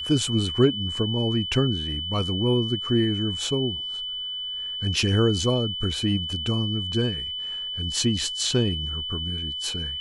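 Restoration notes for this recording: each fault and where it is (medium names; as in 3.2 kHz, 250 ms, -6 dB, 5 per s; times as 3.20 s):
whine 3 kHz -29 dBFS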